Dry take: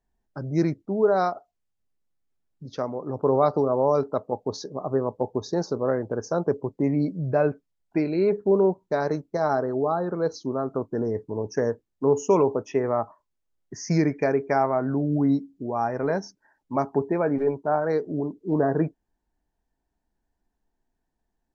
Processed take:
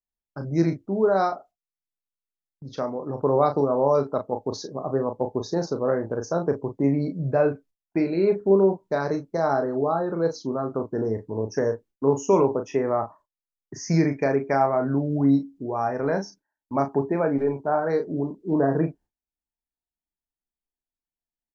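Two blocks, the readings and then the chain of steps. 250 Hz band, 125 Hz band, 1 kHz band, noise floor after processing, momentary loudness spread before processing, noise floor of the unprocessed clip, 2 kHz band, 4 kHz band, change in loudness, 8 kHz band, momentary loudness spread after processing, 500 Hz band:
+1.0 dB, +1.0 dB, +1.0 dB, under -85 dBFS, 9 LU, -79 dBFS, +0.5 dB, +1.0 dB, +1.0 dB, no reading, 9 LU, +0.5 dB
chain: gate -49 dBFS, range -22 dB; doubling 36 ms -7 dB

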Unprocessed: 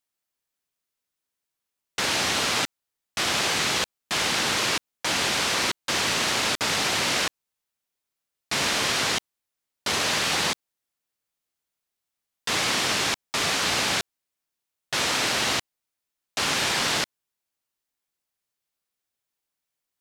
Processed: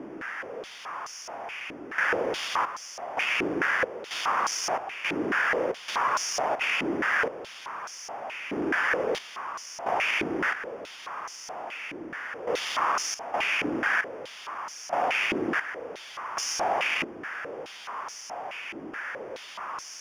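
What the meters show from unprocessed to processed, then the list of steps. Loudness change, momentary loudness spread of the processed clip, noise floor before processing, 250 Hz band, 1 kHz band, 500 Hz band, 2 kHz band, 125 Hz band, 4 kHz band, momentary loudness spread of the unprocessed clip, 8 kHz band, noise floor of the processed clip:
-5.5 dB, 13 LU, -85 dBFS, +1.0 dB, +1.0 dB, +2.5 dB, 0.0 dB, -9.5 dB, -11.0 dB, 7 LU, -9.0 dB, -44 dBFS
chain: jump at every zero crossing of -25.5 dBFS; sample-rate reducer 4 kHz, jitter 0%; step-sequenced band-pass 4.7 Hz 320–5700 Hz; trim +5 dB

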